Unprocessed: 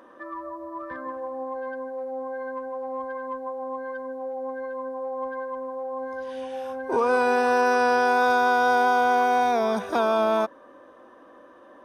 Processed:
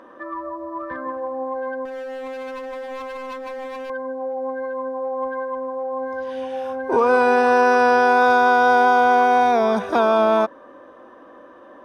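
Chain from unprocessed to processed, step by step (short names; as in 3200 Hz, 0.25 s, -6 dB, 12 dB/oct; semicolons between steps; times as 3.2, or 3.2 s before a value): high shelf 6100 Hz -10.5 dB; 1.85–3.9 overloaded stage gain 35 dB; gain +5.5 dB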